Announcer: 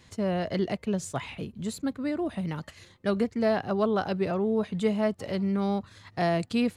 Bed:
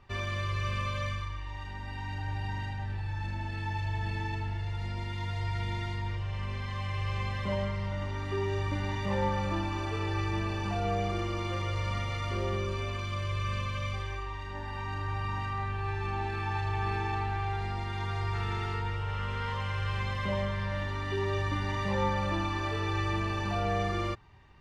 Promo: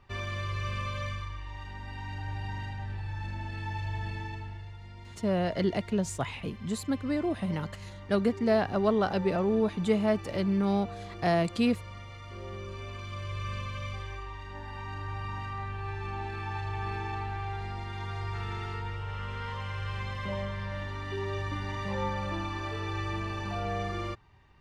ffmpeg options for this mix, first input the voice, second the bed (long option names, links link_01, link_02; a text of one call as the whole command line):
ffmpeg -i stem1.wav -i stem2.wav -filter_complex "[0:a]adelay=5050,volume=0dB[link_01];[1:a]volume=7dB,afade=type=out:start_time=3.97:duration=0.82:silence=0.316228,afade=type=in:start_time=12.26:duration=1.2:silence=0.375837[link_02];[link_01][link_02]amix=inputs=2:normalize=0" out.wav